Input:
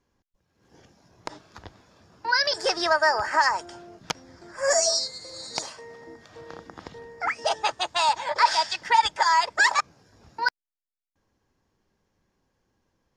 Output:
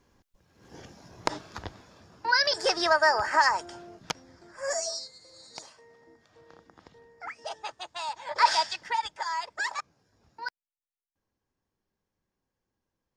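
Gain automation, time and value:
1.3 s +7.5 dB
2.36 s -1 dB
3.89 s -1 dB
5.11 s -12.5 dB
8.18 s -12.5 dB
8.48 s 0 dB
9.06 s -11.5 dB

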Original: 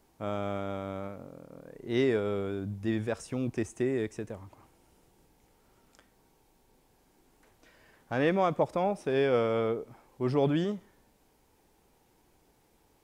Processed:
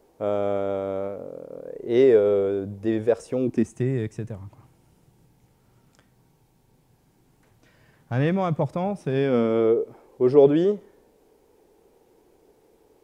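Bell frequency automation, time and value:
bell +14.5 dB 1.1 oct
3.37 s 480 Hz
3.8 s 130 Hz
9.01 s 130 Hz
9.78 s 430 Hz

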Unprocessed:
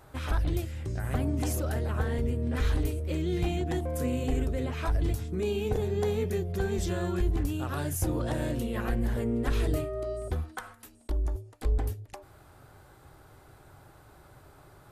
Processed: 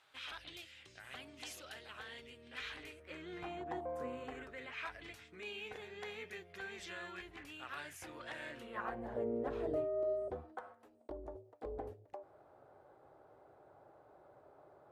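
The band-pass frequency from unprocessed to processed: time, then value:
band-pass, Q 1.9
2.49 s 3100 Hz
3.89 s 790 Hz
4.71 s 2200 Hz
8.42 s 2200 Hz
9.19 s 580 Hz

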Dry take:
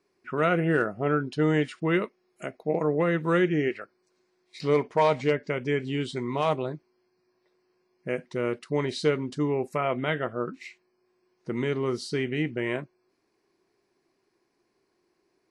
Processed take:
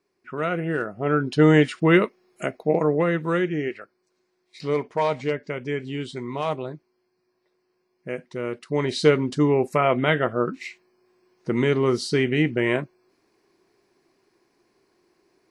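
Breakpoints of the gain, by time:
0.87 s -2 dB
1.36 s +8 dB
2.47 s +8 dB
3.47 s -1 dB
8.5 s -1 dB
9.06 s +7 dB

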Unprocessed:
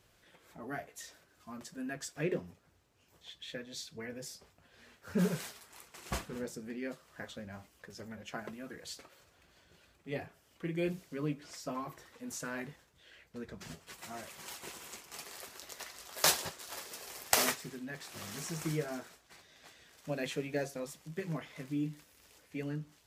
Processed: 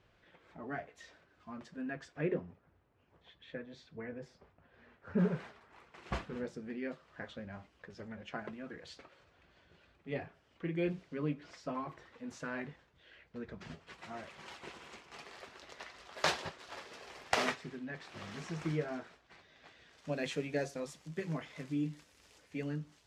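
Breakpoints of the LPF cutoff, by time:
1.78 s 3000 Hz
2.48 s 1800 Hz
5.65 s 1800 Hz
6.2 s 3300 Hz
19.7 s 3300 Hz
20.26 s 7400 Hz

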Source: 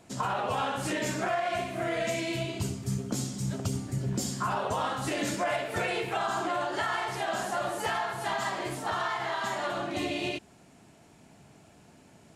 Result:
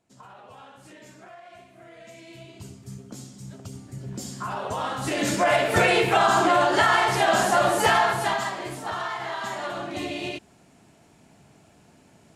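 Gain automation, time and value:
1.97 s -17 dB
2.75 s -8.5 dB
3.65 s -8.5 dB
5.02 s +3 dB
5.66 s +11 dB
8.1 s +11 dB
8.56 s +0.5 dB

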